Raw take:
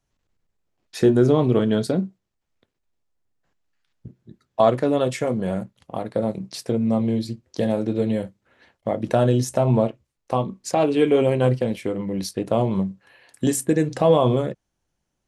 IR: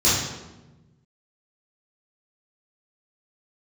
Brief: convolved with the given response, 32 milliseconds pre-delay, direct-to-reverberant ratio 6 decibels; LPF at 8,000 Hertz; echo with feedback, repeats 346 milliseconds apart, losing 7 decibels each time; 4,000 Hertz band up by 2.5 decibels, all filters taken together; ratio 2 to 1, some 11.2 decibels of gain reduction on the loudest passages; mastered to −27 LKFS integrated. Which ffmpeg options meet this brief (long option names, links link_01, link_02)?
-filter_complex "[0:a]lowpass=8000,equalizer=frequency=4000:width_type=o:gain=3.5,acompressor=threshold=-33dB:ratio=2,aecho=1:1:346|692|1038|1384|1730:0.447|0.201|0.0905|0.0407|0.0183,asplit=2[link_01][link_02];[1:a]atrim=start_sample=2205,adelay=32[link_03];[link_02][link_03]afir=irnorm=-1:irlink=0,volume=-24dB[link_04];[link_01][link_04]amix=inputs=2:normalize=0,volume=1dB"